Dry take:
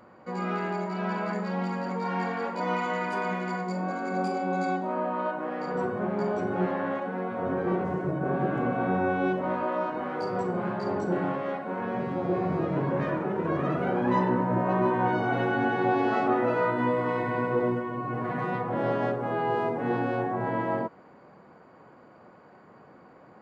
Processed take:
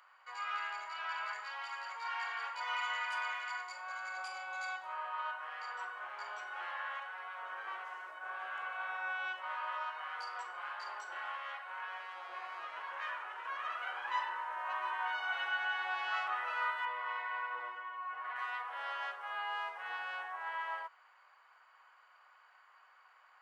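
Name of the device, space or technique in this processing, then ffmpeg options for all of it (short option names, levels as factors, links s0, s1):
headphones lying on a table: -filter_complex "[0:a]highpass=f=1100:w=0.5412,highpass=f=1100:w=1.3066,equalizer=f=3000:t=o:w=0.24:g=7,asettb=1/sr,asplit=3[s0][s1][s2];[s0]atrim=end=16.854[s3];[s1]atrim=start=16.85:end=18.36,asetpts=PTS-STARTPTS,afade=t=in:d=0.004:c=qsin,afade=t=out:st=1.506:d=0.004:c=qsin,aemphasis=mode=reproduction:type=75fm[s4];[s2]atrim=start=18.356[s5];[s3][s4]acrossfade=d=0.004:c1=hsin:c2=qsin[s6];[s6][s5]acrossfade=d=0.004:c1=qsin:c2=hsin,volume=0.75"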